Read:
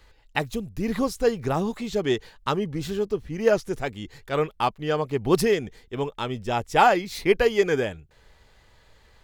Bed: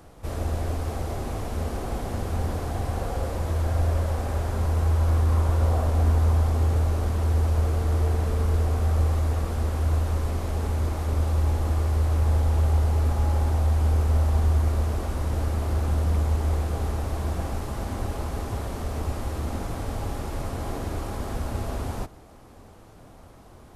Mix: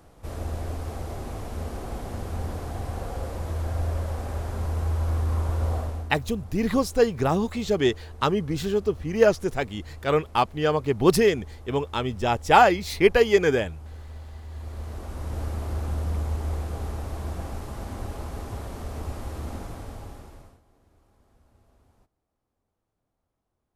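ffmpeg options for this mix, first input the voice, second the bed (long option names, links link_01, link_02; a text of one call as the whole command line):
ffmpeg -i stem1.wav -i stem2.wav -filter_complex "[0:a]adelay=5750,volume=2dB[link_01];[1:a]volume=11dB,afade=type=out:start_time=5.74:duration=0.37:silence=0.16788,afade=type=in:start_time=14.48:duration=0.95:silence=0.177828,afade=type=out:start_time=19.5:duration=1.11:silence=0.0421697[link_02];[link_01][link_02]amix=inputs=2:normalize=0" out.wav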